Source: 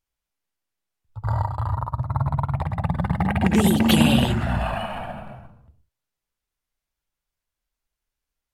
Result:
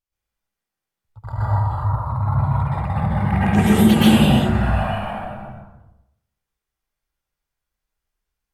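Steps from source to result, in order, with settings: plate-style reverb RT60 0.81 s, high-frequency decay 0.45×, pre-delay 110 ms, DRR -9.5 dB; trim -7 dB

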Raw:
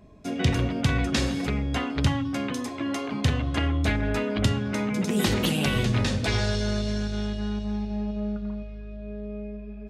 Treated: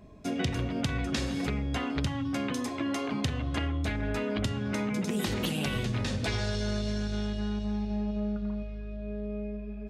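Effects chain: compression, threshold -27 dBFS, peak gain reduction 10.5 dB

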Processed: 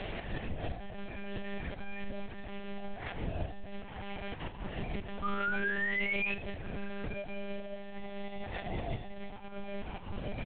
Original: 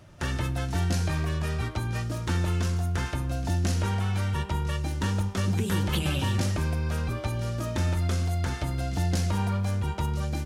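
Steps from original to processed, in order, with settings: one-bit delta coder 32 kbps, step -41.5 dBFS; peaking EQ 930 Hz +14.5 dB 2.7 oct; hum notches 50/100/150/200/250/300/350/400/450 Hz; compressor with a negative ratio -33 dBFS, ratio -0.5; peak limiter -29.5 dBFS, peak gain reduction 18.5 dB; static phaser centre 2.8 kHz, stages 4; feedback comb 140 Hz, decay 0.36 s, harmonics all, mix 50%; painted sound rise, 5.23–6.34 s, 1.2–2.6 kHz -41 dBFS; on a send: delay 76 ms -12 dB; on the sum: monotone LPC vocoder at 8 kHz 200 Hz; trim +8 dB

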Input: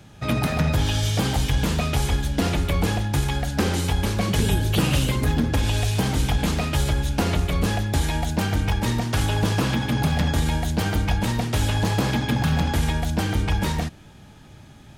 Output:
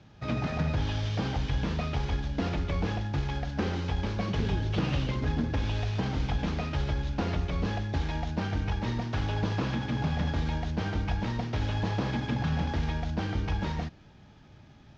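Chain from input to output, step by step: CVSD coder 32 kbps; treble shelf 3.4 kHz -6.5 dB; Chebyshev shaper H 6 -35 dB, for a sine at -9.5 dBFS; trim -7 dB

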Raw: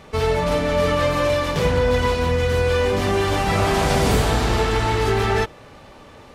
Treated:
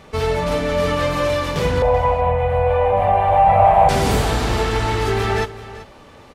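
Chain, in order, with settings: 1.82–3.89 s: FFT filter 140 Hz 0 dB, 360 Hz -21 dB, 540 Hz +9 dB, 780 Hz +14 dB, 1.4 kHz -7 dB, 2.4 kHz -3 dB, 5.4 kHz -30 dB, 9.4 kHz -18 dB; delay 385 ms -16 dB

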